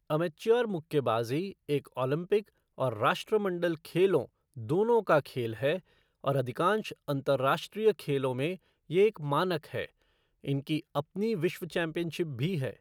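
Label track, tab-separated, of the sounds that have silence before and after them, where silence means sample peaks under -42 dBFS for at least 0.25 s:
2.780000	4.250000	sound
4.570000	5.790000	sound
6.240000	8.560000	sound
8.900000	9.860000	sound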